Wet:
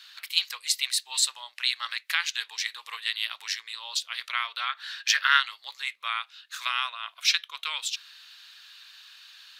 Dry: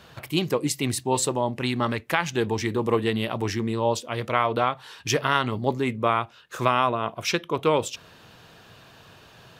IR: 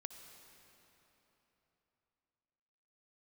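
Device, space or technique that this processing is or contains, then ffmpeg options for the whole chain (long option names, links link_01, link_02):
headphones lying on a table: -filter_complex "[0:a]asettb=1/sr,asplit=3[link_01][link_02][link_03];[link_01]atrim=end=4.694[link_04];[link_02]atrim=start=4.69:end=5.4,asetpts=PTS-STARTPTS,afade=type=in:duration=0.004:curve=qsin,afade=type=out:start_time=0.706:duration=0.004:curve=qsin,equalizer=frequency=250:width_type=o:width=0.67:gain=7,equalizer=frequency=1600:width_type=o:width=0.67:gain=10,equalizer=frequency=10000:width_type=o:width=0.67:gain=-5[link_05];[link_03]atrim=start=5.396[link_06];[link_04][link_05]acrossfade=duration=0.004:curve1=hsin:curve2=qsin[link_07];[link_07][link_06]acrossfade=duration=0.004:curve1=qsin:curve2=hsin,highpass=frequency=1500:width=0.5412,highpass=frequency=1500:width=1.3066,equalizer=frequency=4100:width_type=o:width=0.6:gain=10"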